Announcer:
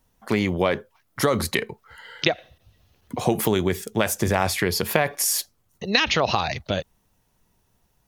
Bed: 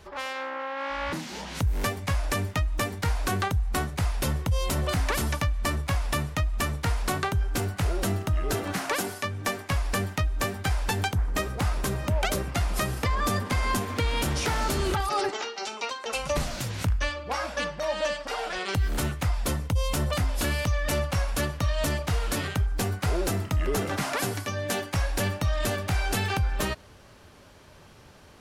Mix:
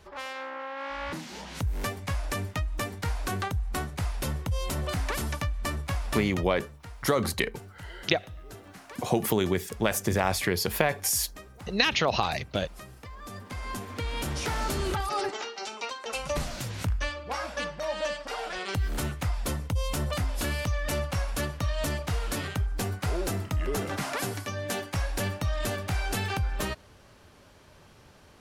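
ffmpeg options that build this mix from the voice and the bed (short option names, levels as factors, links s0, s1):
-filter_complex "[0:a]adelay=5850,volume=0.631[s0];[1:a]volume=3.55,afade=t=out:st=6.24:d=0.37:silence=0.199526,afade=t=in:st=13.21:d=1.41:silence=0.177828[s1];[s0][s1]amix=inputs=2:normalize=0"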